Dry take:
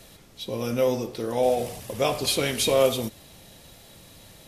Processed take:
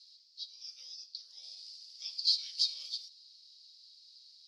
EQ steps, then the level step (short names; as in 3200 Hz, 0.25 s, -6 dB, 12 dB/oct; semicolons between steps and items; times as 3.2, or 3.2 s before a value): Butterworth band-pass 4700 Hz, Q 5.1; +5.0 dB